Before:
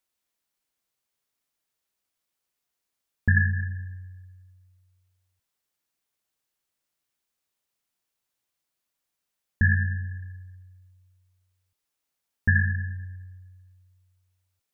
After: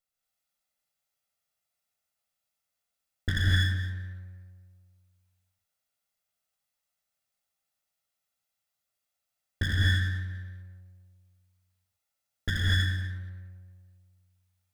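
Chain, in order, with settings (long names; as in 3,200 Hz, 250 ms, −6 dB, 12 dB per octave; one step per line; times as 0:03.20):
lower of the sound and its delayed copy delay 1.5 ms
reverb whose tail is shaped and stops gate 270 ms rising, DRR −4 dB
level −5.5 dB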